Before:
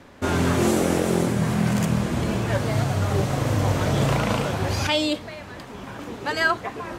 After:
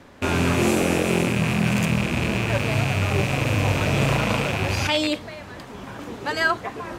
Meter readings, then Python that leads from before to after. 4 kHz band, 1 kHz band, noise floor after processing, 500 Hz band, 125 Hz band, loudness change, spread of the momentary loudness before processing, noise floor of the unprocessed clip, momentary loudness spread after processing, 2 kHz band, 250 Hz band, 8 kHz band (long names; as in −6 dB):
+2.0 dB, 0.0 dB, −39 dBFS, 0.0 dB, 0.0 dB, +1.0 dB, 13 LU, −39 dBFS, 13 LU, +3.5 dB, 0.0 dB, 0.0 dB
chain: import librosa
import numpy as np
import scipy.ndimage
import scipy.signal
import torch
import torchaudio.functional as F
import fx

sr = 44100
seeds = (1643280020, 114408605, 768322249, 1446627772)

y = fx.rattle_buzz(x, sr, strikes_db=-30.0, level_db=-16.0)